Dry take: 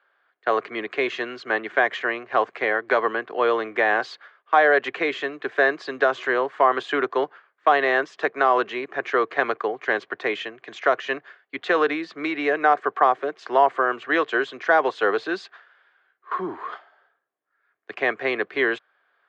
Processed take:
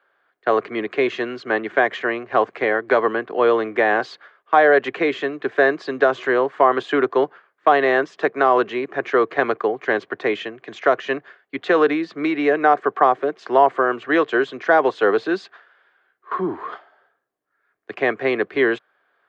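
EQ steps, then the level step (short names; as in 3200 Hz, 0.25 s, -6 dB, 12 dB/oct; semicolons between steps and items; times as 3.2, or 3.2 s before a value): low shelf 480 Hz +10 dB; 0.0 dB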